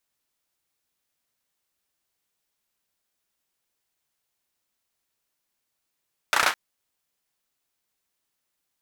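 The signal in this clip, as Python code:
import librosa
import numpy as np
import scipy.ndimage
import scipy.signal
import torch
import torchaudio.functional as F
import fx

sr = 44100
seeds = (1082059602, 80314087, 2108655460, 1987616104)

y = fx.drum_clap(sr, seeds[0], length_s=0.21, bursts=5, spacing_ms=33, hz=1300.0, decay_s=0.22)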